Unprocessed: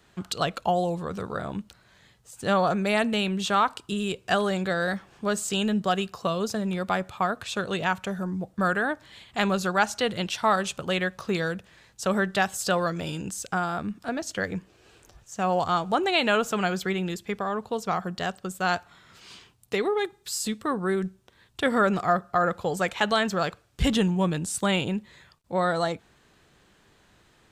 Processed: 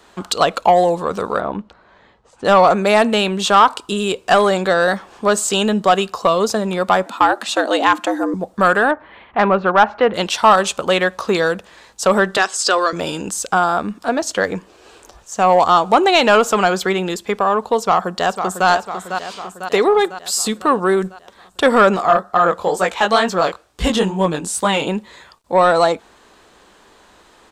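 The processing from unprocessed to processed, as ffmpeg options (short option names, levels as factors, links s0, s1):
-filter_complex "[0:a]asettb=1/sr,asplit=3[s0][s1][s2];[s0]atrim=end=1.404[s3];[s1]atrim=start=1.4:end=2.45,asetpts=PTS-STARTPTS,afade=t=in:d=0.004:c=qsin,afade=t=out:st=1.046:d=0.004:c=qsin,adynamicsmooth=sensitivity=0.5:basefreq=2400[s4];[s2]atrim=start=2.446[s5];[s3][s4]acrossfade=d=0.004:c1=hsin:c2=qsin[s6];[s6][s5]acrossfade=d=0.004:c1=qsin:c2=hsin,asettb=1/sr,asplit=3[s7][s8][s9];[s7]atrim=end=7.064[s10];[s8]atrim=start=7.06:end=8.34,asetpts=PTS-STARTPTS,afade=t=in:d=0.004:c=qsin,afade=t=out:st=1.276:d=0.004:c=qsin,afreqshift=120[s11];[s9]atrim=start=8.336[s12];[s10][s11]acrossfade=d=0.004:c1=hsin:c2=qsin[s13];[s13][s12]acrossfade=d=0.004:c1=qsin:c2=hsin,asettb=1/sr,asplit=3[s14][s15][s16];[s14]atrim=end=8.914[s17];[s15]atrim=start=8.91:end=10.14,asetpts=PTS-STARTPTS,afade=t=in:d=0.004:c=qsin,afade=t=out:st=1.226:d=0.004:c=qsin,lowpass=f=2300:w=0.5412,lowpass=f=2300:w=1.3066[s18];[s16]atrim=start=10.136[s19];[s17][s18]acrossfade=d=0.004:c1=hsin:c2=qsin[s20];[s20][s19]acrossfade=d=0.004:c1=qsin:c2=hsin,asettb=1/sr,asplit=3[s21][s22][s23];[s21]atrim=end=12.374[s24];[s22]atrim=start=12.37:end=12.93,asetpts=PTS-STARTPTS,afade=t=in:d=0.004:c=qsin,afade=t=out:st=0.556:d=0.004:c=qsin,highpass=f=310:w=0.5412,highpass=f=310:w=1.3066,equalizer=f=570:t=q:w=4:g=-7,equalizer=f=830:t=q:w=4:g=-10,equalizer=f=5000:t=q:w=4:g=6,lowpass=f=9000:w=0.5412,lowpass=f=9000:w=1.3066[s25];[s23]atrim=start=12.926[s26];[s24][s25]acrossfade=d=0.004:c1=hsin:c2=qsin[s27];[s27][s26]acrossfade=d=0.004:c1=qsin:c2=hsin,asplit=2[s28][s29];[s29]afade=t=in:st=17.79:d=0.01,afade=t=out:st=18.68:d=0.01,aecho=0:1:500|1000|1500|2000|2500|3000|3500:0.354813|0.212888|0.127733|0.0766397|0.0459838|0.0275903|0.0165542[s30];[s28][s30]amix=inputs=2:normalize=0,asettb=1/sr,asplit=3[s31][s32][s33];[s31]atrim=end=21.964[s34];[s32]atrim=start=21.96:end=24.87,asetpts=PTS-STARTPTS,afade=t=in:d=0.004:c=qsin,afade=t=out:st=2.906:d=0.004:c=qsin,flanger=delay=16:depth=7.1:speed=2.2[s35];[s33]atrim=start=24.866[s36];[s34][s35]acrossfade=d=0.004:c1=hsin:c2=qsin[s37];[s37][s36]acrossfade=d=0.004:c1=qsin:c2=hsin,equalizer=f=125:t=o:w=1:g=-11,equalizer=f=250:t=o:w=1:g=3,equalizer=f=500:t=o:w=1:g=5,equalizer=f=1000:t=o:w=1:g=8,equalizer=f=4000:t=o:w=1:g=3,equalizer=f=8000:t=o:w=1:g=4,acontrast=83"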